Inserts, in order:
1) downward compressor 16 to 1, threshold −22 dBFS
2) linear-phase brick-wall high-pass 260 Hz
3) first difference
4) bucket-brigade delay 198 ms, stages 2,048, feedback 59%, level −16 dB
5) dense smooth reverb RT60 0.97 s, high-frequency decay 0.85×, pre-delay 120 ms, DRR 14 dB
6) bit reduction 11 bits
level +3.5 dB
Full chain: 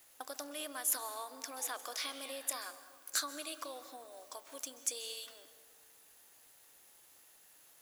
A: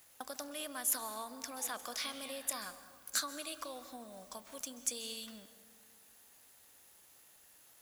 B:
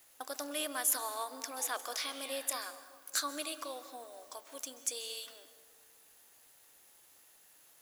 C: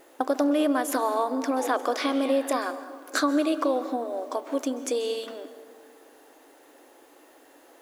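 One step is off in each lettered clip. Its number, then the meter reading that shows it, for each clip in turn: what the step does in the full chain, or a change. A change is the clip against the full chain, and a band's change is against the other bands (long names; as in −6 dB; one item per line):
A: 2, 250 Hz band +3.5 dB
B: 1, average gain reduction 1.5 dB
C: 3, 8 kHz band −18.0 dB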